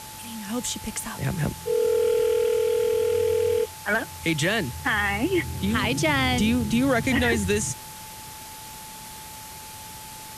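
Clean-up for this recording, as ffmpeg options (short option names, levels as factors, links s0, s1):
-af "bandreject=f=870:w=30,afwtdn=0.01"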